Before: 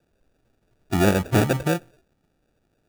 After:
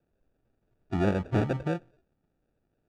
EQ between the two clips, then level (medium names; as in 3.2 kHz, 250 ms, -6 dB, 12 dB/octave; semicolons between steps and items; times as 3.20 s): tape spacing loss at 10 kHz 28 dB; treble shelf 5.3 kHz +4.5 dB; -6.0 dB